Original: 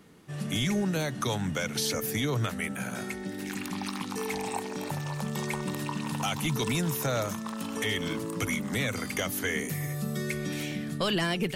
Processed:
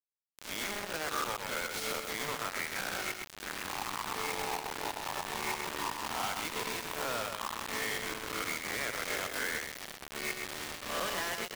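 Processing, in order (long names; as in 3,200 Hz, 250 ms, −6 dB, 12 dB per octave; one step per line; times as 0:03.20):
peak hold with a rise ahead of every peak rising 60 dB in 0.65 s
three-way crossover with the lows and the highs turned down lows −17 dB, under 240 Hz, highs −17 dB, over 2,200 Hz
downward compressor 12 to 1, threshold −33 dBFS, peak gain reduction 9.5 dB
meter weighting curve A
bit reduction 6 bits
on a send: single-tap delay 127 ms −6 dB
on the sum: level +1.5 dB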